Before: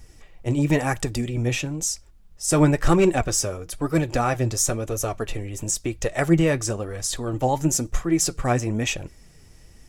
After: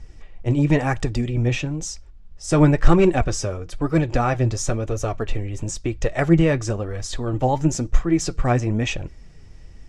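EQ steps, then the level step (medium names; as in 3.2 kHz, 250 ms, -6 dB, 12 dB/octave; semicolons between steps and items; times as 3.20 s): distance through air 100 m; bass shelf 89 Hz +7.5 dB; +1.5 dB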